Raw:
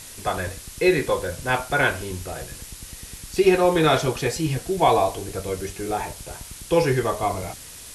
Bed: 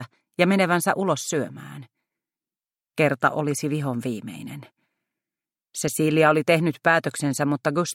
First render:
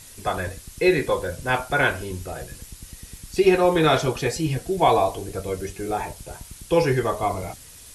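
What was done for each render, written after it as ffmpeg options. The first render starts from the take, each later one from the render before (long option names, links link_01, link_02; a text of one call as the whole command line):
ffmpeg -i in.wav -af "afftdn=noise_reduction=6:noise_floor=-41" out.wav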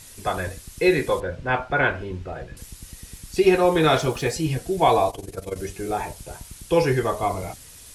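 ffmpeg -i in.wav -filter_complex "[0:a]asettb=1/sr,asplit=3[link_01][link_02][link_03];[link_01]atrim=end=1.204[link_04];[link_02]atrim=start=1.2:end=2.57,asetpts=PTS-STARTPTS,afade=type=in:duration=0.004:curve=qsin,afade=type=out:start_time=1.366:duration=0.004:curve=qsin,lowpass=2700[link_05];[link_03]atrim=start=2.566[link_06];[link_04][link_05]acrossfade=duration=0.004:curve1=hsin:curve2=qsin[link_07];[link_07][link_06]acrossfade=duration=0.004:curve1=qsin:curve2=hsin,asettb=1/sr,asplit=3[link_08][link_09][link_10];[link_08]atrim=end=3.854[link_11];[link_09]atrim=start=3.85:end=4.31,asetpts=PTS-STARTPTS,afade=type=in:duration=0.004:curve=qsin,afade=type=out:start_time=0.456:duration=0.004:curve=qsin,aeval=exprs='val(0)*gte(abs(val(0)),0.00668)':channel_layout=same[link_12];[link_10]atrim=start=4.306[link_13];[link_11][link_12]acrossfade=duration=0.004:curve1=hsin:curve2=qsin[link_14];[link_14][link_13]acrossfade=duration=0.004:curve1=qsin:curve2=hsin,asettb=1/sr,asplit=3[link_15][link_16][link_17];[link_15]atrim=end=5.104[link_18];[link_16]atrim=start=5.1:end=5.56,asetpts=PTS-STARTPTS,afade=type=in:duration=0.004:curve=qsin,afade=type=out:start_time=0.456:duration=0.004:curve=qsin,tremolo=f=21:d=0.824[link_19];[link_17]atrim=start=5.556[link_20];[link_18][link_19]acrossfade=duration=0.004:curve1=hsin:curve2=qsin[link_21];[link_21][link_20]acrossfade=duration=0.004:curve1=qsin:curve2=hsin" out.wav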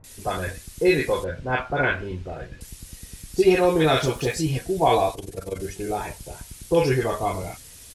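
ffmpeg -i in.wav -filter_complex "[0:a]acrossover=split=1100[link_01][link_02];[link_02]adelay=40[link_03];[link_01][link_03]amix=inputs=2:normalize=0" out.wav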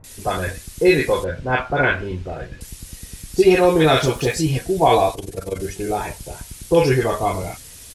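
ffmpeg -i in.wav -af "volume=4.5dB,alimiter=limit=-3dB:level=0:latency=1" out.wav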